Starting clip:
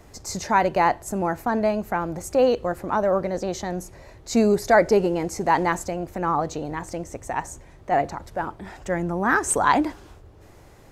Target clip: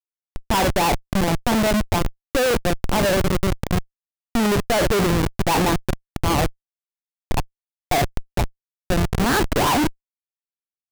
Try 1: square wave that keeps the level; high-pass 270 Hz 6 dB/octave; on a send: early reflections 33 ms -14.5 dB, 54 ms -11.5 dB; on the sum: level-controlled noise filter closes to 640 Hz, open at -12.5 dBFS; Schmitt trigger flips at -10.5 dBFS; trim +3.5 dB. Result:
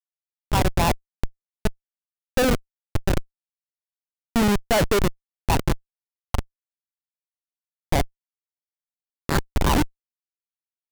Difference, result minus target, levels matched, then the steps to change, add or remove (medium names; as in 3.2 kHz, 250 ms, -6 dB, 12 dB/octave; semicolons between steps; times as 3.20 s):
Schmitt trigger: distortion +4 dB
change: Schmitt trigger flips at -18.5 dBFS